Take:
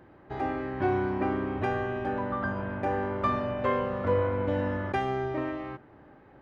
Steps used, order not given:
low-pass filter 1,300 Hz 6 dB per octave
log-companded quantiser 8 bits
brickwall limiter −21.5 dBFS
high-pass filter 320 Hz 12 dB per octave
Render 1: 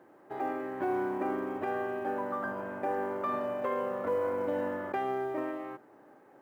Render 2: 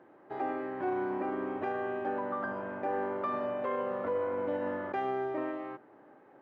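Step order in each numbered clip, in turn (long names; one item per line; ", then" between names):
high-pass filter, then brickwall limiter, then low-pass filter, then log-companded quantiser
brickwall limiter, then high-pass filter, then log-companded quantiser, then low-pass filter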